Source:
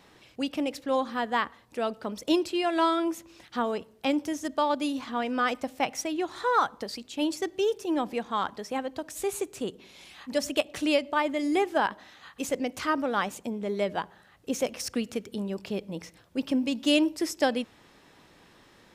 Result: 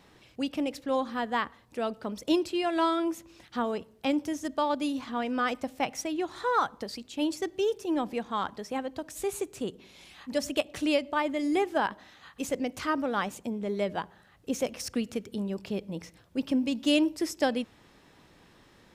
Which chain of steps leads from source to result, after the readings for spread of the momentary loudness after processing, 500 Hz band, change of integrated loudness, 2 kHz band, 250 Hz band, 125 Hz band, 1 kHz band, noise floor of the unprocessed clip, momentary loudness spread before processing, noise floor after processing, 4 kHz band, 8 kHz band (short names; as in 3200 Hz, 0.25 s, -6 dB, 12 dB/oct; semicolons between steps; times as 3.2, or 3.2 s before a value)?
11 LU, -1.5 dB, -1.5 dB, -2.5 dB, -0.5 dB, +0.5 dB, -2.0 dB, -58 dBFS, 11 LU, -59 dBFS, -2.5 dB, -2.5 dB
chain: low shelf 210 Hz +5.5 dB; gain -2.5 dB